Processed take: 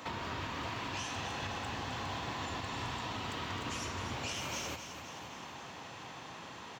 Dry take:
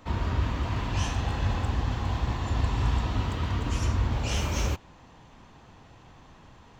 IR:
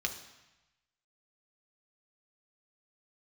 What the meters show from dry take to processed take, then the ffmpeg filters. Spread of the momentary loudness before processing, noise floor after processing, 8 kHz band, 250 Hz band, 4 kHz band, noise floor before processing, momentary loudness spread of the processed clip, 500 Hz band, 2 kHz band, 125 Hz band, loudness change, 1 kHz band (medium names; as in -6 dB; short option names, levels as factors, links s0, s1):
3 LU, -48 dBFS, -3.0 dB, -9.0 dB, -2.0 dB, -53 dBFS, 9 LU, -6.0 dB, -2.0 dB, -17.0 dB, -10.5 dB, -3.5 dB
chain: -filter_complex "[0:a]highpass=130,lowshelf=f=330:g=-11,alimiter=level_in=2.11:limit=0.0631:level=0:latency=1:release=491,volume=0.473,acompressor=threshold=0.00316:ratio=2.5,aecho=1:1:260|520|780|1040|1300|1560|1820:0.355|0.213|0.128|0.0766|0.046|0.0276|0.0166,asplit=2[s0][s1];[1:a]atrim=start_sample=2205[s2];[s1][s2]afir=irnorm=-1:irlink=0,volume=0.119[s3];[s0][s3]amix=inputs=2:normalize=0,volume=2.82"